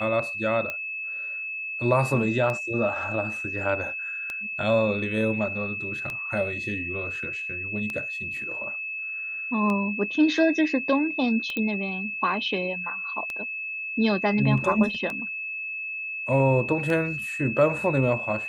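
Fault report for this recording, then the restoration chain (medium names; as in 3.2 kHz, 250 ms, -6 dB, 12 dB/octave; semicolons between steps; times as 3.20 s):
tick 33 1/3 rpm -17 dBFS
whine 2.6 kHz -30 dBFS
11.57 s: pop -15 dBFS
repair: de-click; band-stop 2.6 kHz, Q 30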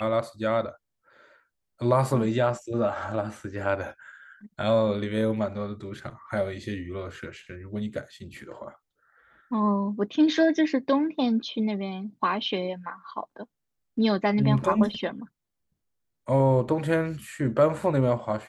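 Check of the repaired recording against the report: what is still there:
nothing left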